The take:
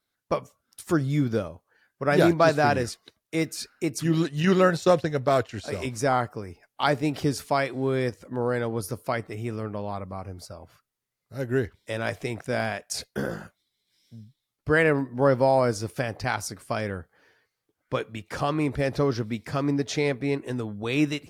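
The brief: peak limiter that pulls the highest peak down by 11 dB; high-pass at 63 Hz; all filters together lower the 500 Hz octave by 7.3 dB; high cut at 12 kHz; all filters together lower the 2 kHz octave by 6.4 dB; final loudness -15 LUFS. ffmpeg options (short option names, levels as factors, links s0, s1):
-af "highpass=63,lowpass=12000,equalizer=f=500:t=o:g=-9,equalizer=f=2000:t=o:g=-8,volume=8.91,alimiter=limit=0.708:level=0:latency=1"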